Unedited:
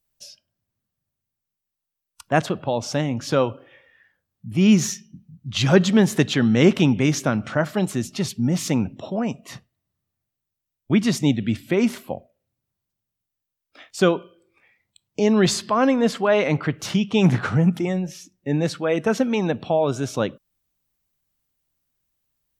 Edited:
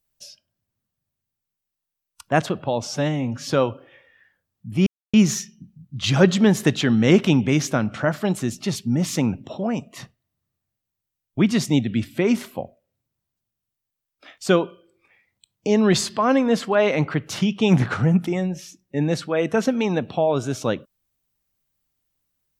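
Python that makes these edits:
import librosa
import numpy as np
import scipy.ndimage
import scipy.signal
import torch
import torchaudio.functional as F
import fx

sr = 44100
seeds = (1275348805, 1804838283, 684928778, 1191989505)

y = fx.edit(x, sr, fx.stretch_span(start_s=2.87, length_s=0.41, factor=1.5),
    fx.insert_silence(at_s=4.66, length_s=0.27), tone=tone)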